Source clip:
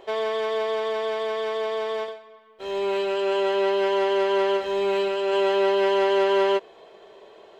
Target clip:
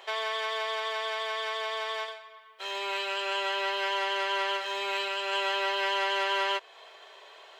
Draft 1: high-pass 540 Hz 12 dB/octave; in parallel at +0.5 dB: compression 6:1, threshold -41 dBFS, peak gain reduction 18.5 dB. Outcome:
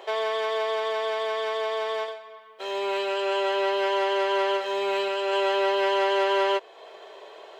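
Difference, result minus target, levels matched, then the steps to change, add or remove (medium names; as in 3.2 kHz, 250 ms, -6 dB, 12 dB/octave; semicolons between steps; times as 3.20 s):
500 Hz band +6.0 dB
change: high-pass 1.2 kHz 12 dB/octave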